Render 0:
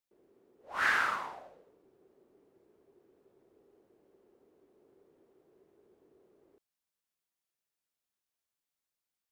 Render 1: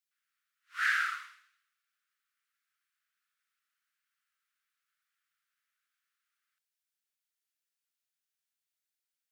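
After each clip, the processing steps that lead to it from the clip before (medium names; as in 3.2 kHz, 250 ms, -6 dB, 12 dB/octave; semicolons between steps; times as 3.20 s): steep high-pass 1.3 kHz 72 dB/octave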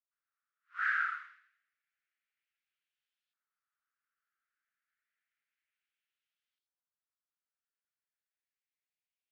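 LFO band-pass saw up 0.3 Hz 950–3500 Hz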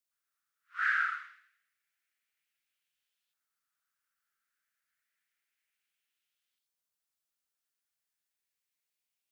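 treble shelf 2.6 kHz +8.5 dB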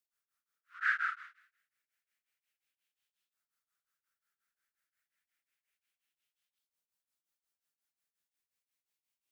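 tremolo of two beating tones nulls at 5.6 Hz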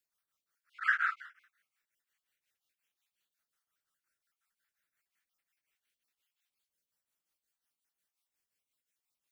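random holes in the spectrogram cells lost 28%; trim +3 dB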